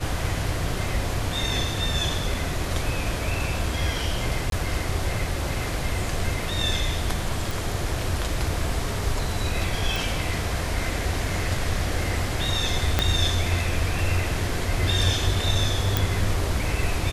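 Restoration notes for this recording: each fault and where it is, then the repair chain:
0:04.50–0:04.52: drop-out 22 ms
0:07.51: click
0:09.96: click
0:12.99: click −5 dBFS
0:15.97: click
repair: click removal
repair the gap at 0:04.50, 22 ms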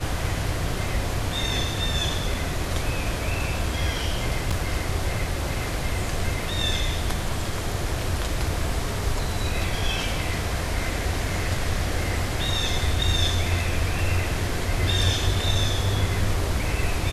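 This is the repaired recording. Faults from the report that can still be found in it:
0:12.99: click

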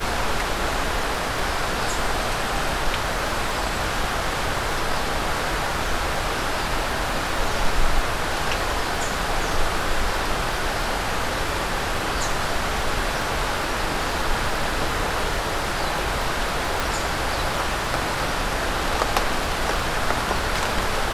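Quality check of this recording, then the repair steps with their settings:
surface crackle 27 per second −28 dBFS
0:16.80: click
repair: click removal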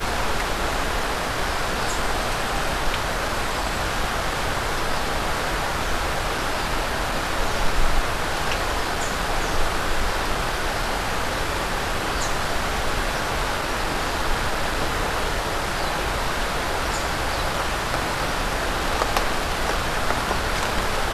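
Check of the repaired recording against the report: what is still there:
0:16.80: click

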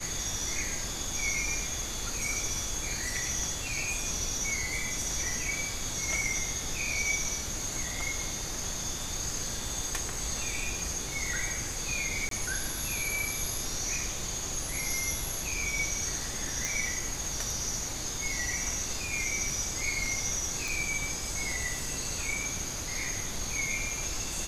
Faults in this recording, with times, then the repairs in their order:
0:12.29–0:12.31: drop-out 23 ms
0:16.65: click
0:20.68: click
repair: click removal
repair the gap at 0:12.29, 23 ms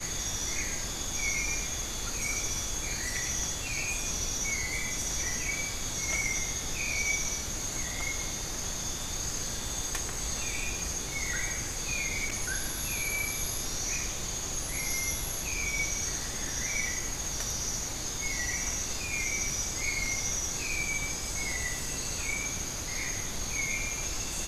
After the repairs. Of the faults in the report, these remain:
none of them is left

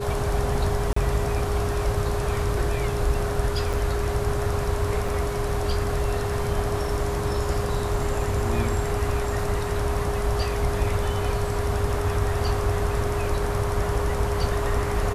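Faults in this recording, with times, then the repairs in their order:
whistle 410 Hz −29 dBFS
0:00.93–0:00.96: drop-out 34 ms
0:03.73: drop-out 4.4 ms
0:05.08: drop-out 4.3 ms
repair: notch filter 410 Hz, Q 30
repair the gap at 0:00.93, 34 ms
repair the gap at 0:03.73, 4.4 ms
repair the gap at 0:05.08, 4.3 ms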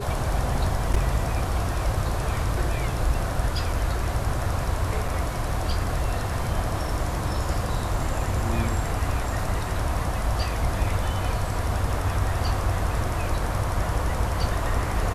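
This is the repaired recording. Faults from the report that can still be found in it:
none of them is left

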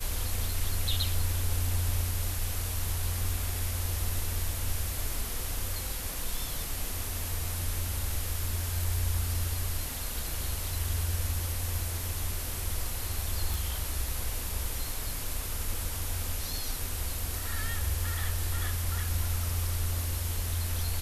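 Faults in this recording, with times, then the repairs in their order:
0:13.54: click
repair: click removal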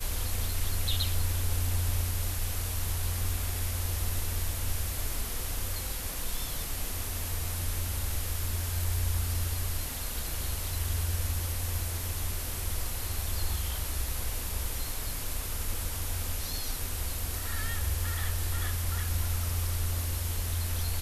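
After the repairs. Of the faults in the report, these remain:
none of them is left

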